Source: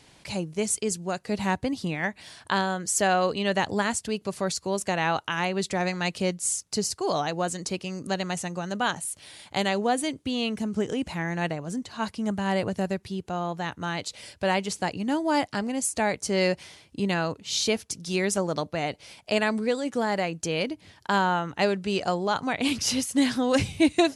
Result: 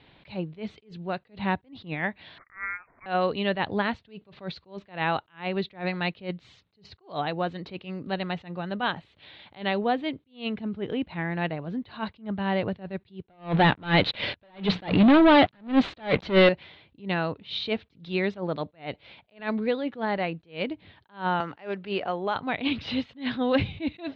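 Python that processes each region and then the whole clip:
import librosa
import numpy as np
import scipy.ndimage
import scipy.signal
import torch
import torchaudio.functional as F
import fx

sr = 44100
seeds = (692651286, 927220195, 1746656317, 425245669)

y = fx.chain(x, sr, fx.highpass(hz=790.0, slope=24),
    fx.freq_invert(carrier_hz=2900), at=(2.38, 3.06))
y = fx.chain(y, sr, fx.hum_notches(base_hz=60, count=3),
    fx.leveller(passes=5), at=(13.22, 16.49))
y = fx.chain(y, sr, fx.low_shelf(hz=260.0, db=-11.0),
    fx.resample_bad(factor=6, down='filtered', up='hold'),
    fx.band_squash(depth_pct=70), at=(21.4, 22.36))
y = scipy.signal.sosfilt(scipy.signal.cheby1(5, 1.0, 3900.0, 'lowpass', fs=sr, output='sos'), y)
y = fx.attack_slew(y, sr, db_per_s=210.0)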